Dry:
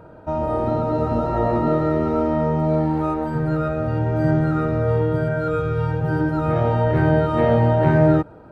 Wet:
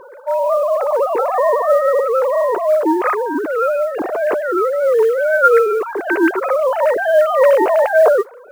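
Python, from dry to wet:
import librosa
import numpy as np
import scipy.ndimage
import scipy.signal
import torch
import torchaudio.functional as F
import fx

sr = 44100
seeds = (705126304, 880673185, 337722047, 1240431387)

y = fx.sine_speech(x, sr)
y = fx.mod_noise(y, sr, seeds[0], snr_db=31)
y = fx.notch(y, sr, hz=830.0, q=12.0)
y = F.gain(torch.from_numpy(y), 4.5).numpy()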